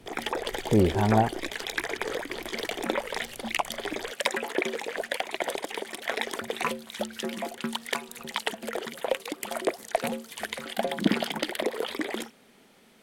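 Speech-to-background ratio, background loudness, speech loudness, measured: 7.0 dB, -31.5 LUFS, -24.5 LUFS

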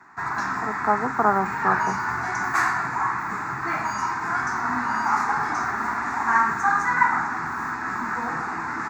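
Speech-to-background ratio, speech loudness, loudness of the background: -0.5 dB, -25.0 LUFS, -24.5 LUFS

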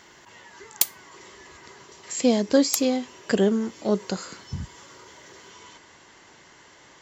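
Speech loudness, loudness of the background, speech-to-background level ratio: -24.5 LUFS, -27.0 LUFS, 2.5 dB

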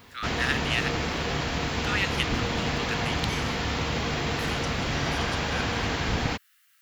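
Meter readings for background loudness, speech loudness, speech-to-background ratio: -28.0 LUFS, -33.0 LUFS, -5.0 dB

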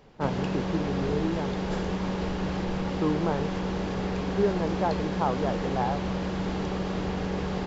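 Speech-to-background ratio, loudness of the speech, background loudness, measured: -0.5 dB, -31.0 LUFS, -30.5 LUFS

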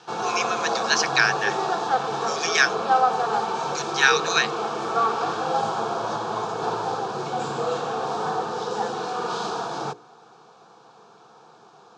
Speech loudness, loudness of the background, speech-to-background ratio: -23.0 LUFS, -26.0 LUFS, 3.0 dB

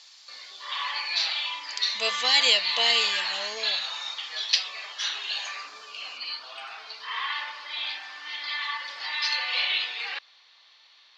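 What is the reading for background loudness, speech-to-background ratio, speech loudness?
-28.5 LUFS, 5.5 dB, -23.0 LUFS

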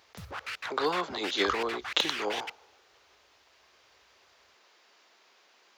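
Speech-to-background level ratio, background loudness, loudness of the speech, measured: 6.0 dB, -37.0 LUFS, -31.0 LUFS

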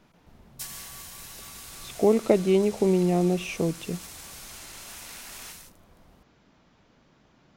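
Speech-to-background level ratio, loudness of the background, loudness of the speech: 16.5 dB, -40.5 LUFS, -24.0 LUFS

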